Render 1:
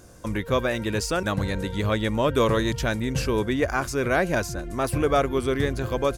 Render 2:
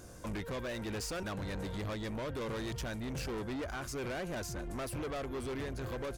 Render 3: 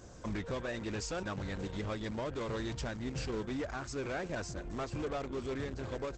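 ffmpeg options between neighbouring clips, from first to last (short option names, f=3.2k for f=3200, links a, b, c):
-af "alimiter=limit=-18.5dB:level=0:latency=1:release=483,asoftclip=type=tanh:threshold=-33.5dB,volume=-2dB"
-filter_complex "[0:a]asplit=2[a][b];[b]acrusher=bits=5:mix=0:aa=0.000001,volume=-11dB[c];[a][c]amix=inputs=2:normalize=0" -ar 48000 -c:a libopus -b:a 12k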